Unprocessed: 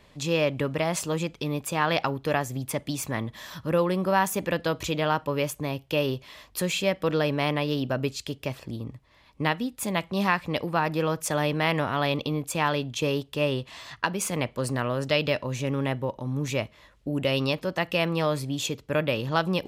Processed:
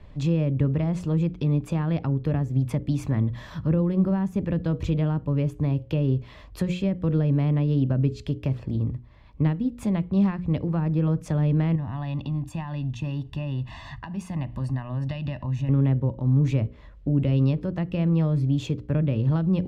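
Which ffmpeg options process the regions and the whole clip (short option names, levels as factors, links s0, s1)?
-filter_complex "[0:a]asettb=1/sr,asplit=3[s0][s1][s2];[s0]atrim=end=11.754[s3];[s1]atrim=start=11.75:end=15.69,asetpts=PTS-STARTPTS,afade=t=in:d=0.004:c=qsin,afade=t=out:st=3.936:d=0.004:c=qsin,aecho=1:1:1.1:0.88,atrim=end_sample=173754,acompressor=threshold=0.0158:ratio=3:attack=3.2:release=140:knee=1:detection=peak[s4];[s2]atrim=start=15.686[s5];[s3][s4]acrossfade=d=0.004:c1=hsin:c2=qsin[s6];[s6][s5]acrossfade=d=0.004:c1=qsin:c2=hsin,aemphasis=mode=reproduction:type=riaa,bandreject=f=60:t=h:w=6,bandreject=f=120:t=h:w=6,bandreject=f=180:t=h:w=6,bandreject=f=240:t=h:w=6,bandreject=f=300:t=h:w=6,bandreject=f=360:t=h:w=6,bandreject=f=420:t=h:w=6,bandreject=f=480:t=h:w=6,bandreject=f=540:t=h:w=6,acrossover=split=340[s7][s8];[s8]acompressor=threshold=0.0178:ratio=6[s9];[s7][s9]amix=inputs=2:normalize=0"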